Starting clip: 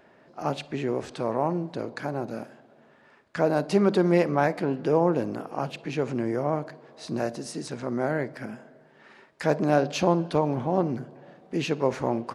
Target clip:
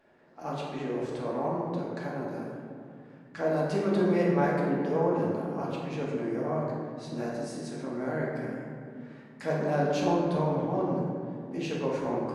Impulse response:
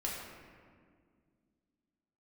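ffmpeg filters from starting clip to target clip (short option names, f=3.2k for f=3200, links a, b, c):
-filter_complex "[1:a]atrim=start_sample=2205,asetrate=36162,aresample=44100[a];[0:a][a]afir=irnorm=-1:irlink=0,volume=-8.5dB"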